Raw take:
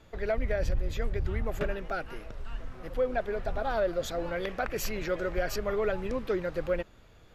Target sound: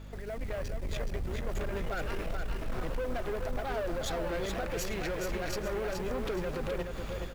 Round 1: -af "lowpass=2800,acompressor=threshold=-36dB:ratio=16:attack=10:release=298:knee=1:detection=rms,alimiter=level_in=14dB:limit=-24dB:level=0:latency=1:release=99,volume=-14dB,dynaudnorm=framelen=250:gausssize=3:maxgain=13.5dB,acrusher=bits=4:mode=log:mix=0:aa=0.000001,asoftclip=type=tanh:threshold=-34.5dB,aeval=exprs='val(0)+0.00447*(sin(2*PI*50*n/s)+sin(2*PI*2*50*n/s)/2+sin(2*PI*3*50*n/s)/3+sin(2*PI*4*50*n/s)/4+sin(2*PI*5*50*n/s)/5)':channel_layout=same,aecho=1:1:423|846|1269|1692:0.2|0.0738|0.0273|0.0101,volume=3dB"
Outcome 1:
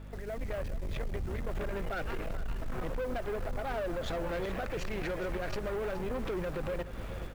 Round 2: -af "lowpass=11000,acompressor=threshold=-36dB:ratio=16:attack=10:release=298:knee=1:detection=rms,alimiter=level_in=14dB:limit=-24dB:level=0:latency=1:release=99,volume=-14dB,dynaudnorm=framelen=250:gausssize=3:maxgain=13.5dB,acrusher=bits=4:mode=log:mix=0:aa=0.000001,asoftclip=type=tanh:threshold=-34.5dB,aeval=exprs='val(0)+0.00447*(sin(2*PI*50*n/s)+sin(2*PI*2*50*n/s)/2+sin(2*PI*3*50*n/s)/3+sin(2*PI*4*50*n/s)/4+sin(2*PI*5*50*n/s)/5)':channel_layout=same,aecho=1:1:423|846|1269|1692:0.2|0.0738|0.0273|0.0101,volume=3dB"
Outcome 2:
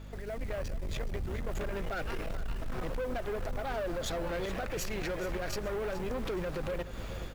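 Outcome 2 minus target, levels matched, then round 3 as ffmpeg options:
echo-to-direct −8.5 dB
-af "lowpass=11000,acompressor=threshold=-36dB:ratio=16:attack=10:release=298:knee=1:detection=rms,alimiter=level_in=14dB:limit=-24dB:level=0:latency=1:release=99,volume=-14dB,dynaudnorm=framelen=250:gausssize=3:maxgain=13.5dB,acrusher=bits=4:mode=log:mix=0:aa=0.000001,asoftclip=type=tanh:threshold=-34.5dB,aeval=exprs='val(0)+0.00447*(sin(2*PI*50*n/s)+sin(2*PI*2*50*n/s)/2+sin(2*PI*3*50*n/s)/3+sin(2*PI*4*50*n/s)/4+sin(2*PI*5*50*n/s)/5)':channel_layout=same,aecho=1:1:423|846|1269|1692:0.531|0.196|0.0727|0.0269,volume=3dB"

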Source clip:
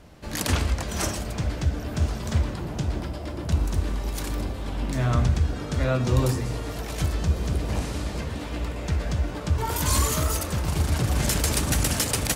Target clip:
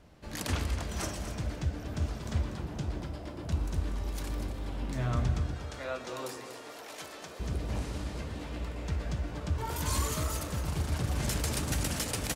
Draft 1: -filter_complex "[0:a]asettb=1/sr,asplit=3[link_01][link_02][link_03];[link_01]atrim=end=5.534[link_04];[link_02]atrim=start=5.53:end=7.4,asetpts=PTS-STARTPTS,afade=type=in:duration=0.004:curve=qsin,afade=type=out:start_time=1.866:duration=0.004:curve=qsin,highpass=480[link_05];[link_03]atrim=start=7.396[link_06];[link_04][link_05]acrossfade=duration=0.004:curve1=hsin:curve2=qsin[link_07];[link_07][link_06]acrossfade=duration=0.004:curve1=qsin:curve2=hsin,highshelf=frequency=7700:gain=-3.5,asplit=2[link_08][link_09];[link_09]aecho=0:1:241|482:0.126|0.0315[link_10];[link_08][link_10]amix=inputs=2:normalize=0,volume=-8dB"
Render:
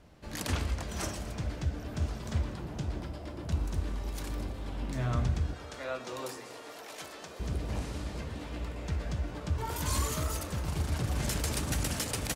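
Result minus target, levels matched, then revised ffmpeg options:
echo-to-direct −8 dB
-filter_complex "[0:a]asettb=1/sr,asplit=3[link_01][link_02][link_03];[link_01]atrim=end=5.534[link_04];[link_02]atrim=start=5.53:end=7.4,asetpts=PTS-STARTPTS,afade=type=in:duration=0.004:curve=qsin,afade=type=out:start_time=1.866:duration=0.004:curve=qsin,highpass=480[link_05];[link_03]atrim=start=7.396[link_06];[link_04][link_05]acrossfade=duration=0.004:curve1=hsin:curve2=qsin[link_07];[link_07][link_06]acrossfade=duration=0.004:curve1=qsin:curve2=hsin,highshelf=frequency=7700:gain=-3.5,asplit=2[link_08][link_09];[link_09]aecho=0:1:241|482|723:0.316|0.0791|0.0198[link_10];[link_08][link_10]amix=inputs=2:normalize=0,volume=-8dB"

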